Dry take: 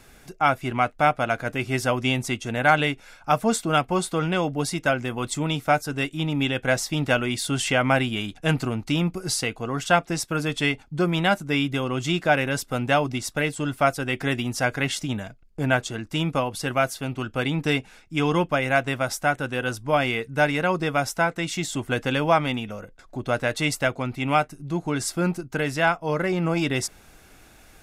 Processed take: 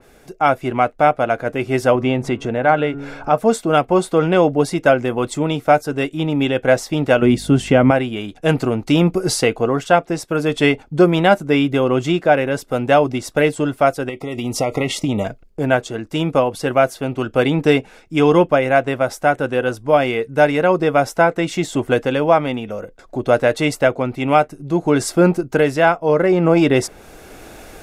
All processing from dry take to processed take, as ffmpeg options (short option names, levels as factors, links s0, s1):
-filter_complex "[0:a]asettb=1/sr,asplit=3[s0][s1][s2];[s0]atrim=end=1.954[s3];[s1]atrim=start=1.95:end=3.38,asetpts=PTS-STARTPTS,afade=t=in:d=0.004:c=qsin,afade=t=out:st=1.426:d=0.004:c=qsin,lowpass=f=2000:p=1,bandreject=f=140.7:t=h:w=4,bandreject=f=281.4:t=h:w=4,bandreject=f=422.1:t=h:w=4,bandreject=f=562.8:t=h:w=4,bandreject=f=703.5:t=h:w=4,bandreject=f=844.2:t=h:w=4,bandreject=f=984.9:t=h:w=4,bandreject=f=1125.6:t=h:w=4,bandreject=f=1266.3:t=h:w=4,bandreject=f=1407:t=h:w=4,bandreject=f=1547.7:t=h:w=4,bandreject=f=1688.4:t=h:w=4,bandreject=f=1829.1:t=h:w=4,acompressor=mode=upward:threshold=0.0891:ratio=2.5:attack=3.2:release=140:knee=2.83:detection=peak[s4];[s2]atrim=start=3.376[s5];[s3][s4]acrossfade=d=0.004:c1=hsin:c2=qsin[s6];[s6][s5]acrossfade=d=0.004:c1=qsin:c2=hsin,asettb=1/sr,asplit=3[s7][s8][s9];[s7]atrim=end=7.224[s10];[s8]atrim=start=7.22:end=7.91,asetpts=PTS-STARTPTS,afade=t=in:d=0.004:c=qsin,afade=t=out:st=0.686:d=0.004:c=qsin,equalizer=f=180:w=0.68:g=12,aeval=exprs='val(0)+0.0141*(sin(2*PI*50*n/s)+sin(2*PI*2*50*n/s)/2+sin(2*PI*3*50*n/s)/3+sin(2*PI*4*50*n/s)/4+sin(2*PI*5*50*n/s)/5)':c=same[s11];[s9]atrim=start=7.906[s12];[s10][s11]acrossfade=d=0.004:c1=hsin:c2=qsin[s13];[s13][s12]acrossfade=d=0.004:c1=qsin:c2=hsin,asettb=1/sr,asplit=3[s14][s15][s16];[s14]atrim=end=14.094[s17];[s15]atrim=start=14.09:end=15.25,asetpts=PTS-STARTPTS,afade=t=in:d=0.004:c=qsin,afade=t=out:st=1.156:d=0.004:c=qsin,agate=range=0.0224:threshold=0.0224:ratio=3:release=100:detection=peak,acompressor=threshold=0.0398:ratio=6:attack=3.2:release=140:knee=1:detection=peak,asuperstop=centerf=1600:order=20:qfactor=3.2[s18];[s16]atrim=start=15.246[s19];[s17][s18]acrossfade=d=0.004:c1=hsin:c2=qsin[s20];[s20][s19]acrossfade=d=0.004:c1=qsin:c2=hsin,equalizer=f=470:t=o:w=1.6:g=9.5,dynaudnorm=f=260:g=3:m=3.76,adynamicequalizer=threshold=0.0251:dfrequency=3100:dqfactor=0.7:tfrequency=3100:tqfactor=0.7:attack=5:release=100:ratio=0.375:range=2.5:mode=cutabove:tftype=highshelf,volume=0.891"